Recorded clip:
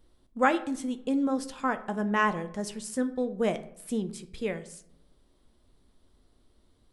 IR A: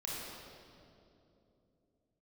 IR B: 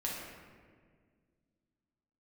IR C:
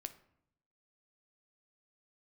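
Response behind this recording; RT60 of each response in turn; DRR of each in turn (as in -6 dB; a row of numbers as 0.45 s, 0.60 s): C; 2.9 s, 1.8 s, 0.75 s; -6.0 dB, -4.5 dB, 9.0 dB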